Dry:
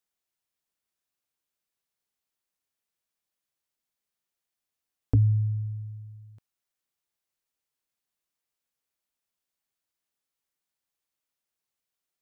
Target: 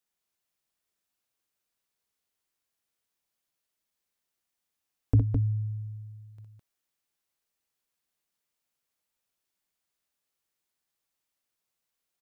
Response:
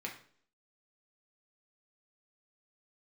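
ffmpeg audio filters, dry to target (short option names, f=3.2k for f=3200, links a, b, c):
-af "aecho=1:1:61.22|209.9:0.562|0.708"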